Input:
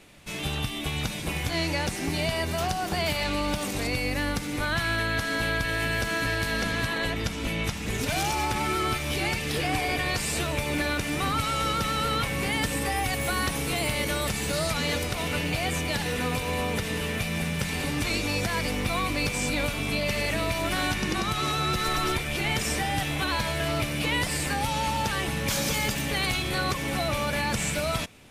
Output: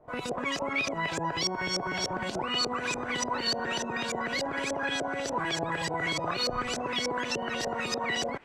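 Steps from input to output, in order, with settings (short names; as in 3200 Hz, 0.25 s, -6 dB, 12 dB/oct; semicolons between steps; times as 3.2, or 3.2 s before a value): wide varispeed 3.35×; LFO low-pass saw up 3.4 Hz 530–6200 Hz; gain -4 dB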